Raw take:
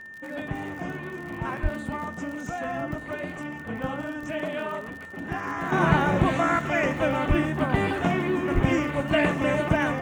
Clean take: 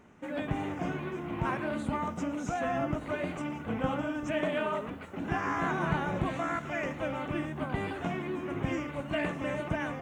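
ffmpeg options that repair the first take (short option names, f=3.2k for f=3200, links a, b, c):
-filter_complex "[0:a]adeclick=t=4,bandreject=f=1.8k:w=30,asplit=3[a][b][c];[a]afade=t=out:st=1.62:d=0.02[d];[b]highpass=f=140:w=0.5412,highpass=f=140:w=1.3066,afade=t=in:st=1.62:d=0.02,afade=t=out:st=1.74:d=0.02[e];[c]afade=t=in:st=1.74:d=0.02[f];[d][e][f]amix=inputs=3:normalize=0,asplit=3[g][h][i];[g]afade=t=out:st=7.28:d=0.02[j];[h]highpass=f=140:w=0.5412,highpass=f=140:w=1.3066,afade=t=in:st=7.28:d=0.02,afade=t=out:st=7.4:d=0.02[k];[i]afade=t=in:st=7.4:d=0.02[l];[j][k][l]amix=inputs=3:normalize=0,asplit=3[m][n][o];[m]afade=t=out:st=8.54:d=0.02[p];[n]highpass=f=140:w=0.5412,highpass=f=140:w=1.3066,afade=t=in:st=8.54:d=0.02,afade=t=out:st=8.66:d=0.02[q];[o]afade=t=in:st=8.66:d=0.02[r];[p][q][r]amix=inputs=3:normalize=0,asetnsamples=n=441:p=0,asendcmd='5.72 volume volume -9.5dB',volume=0dB"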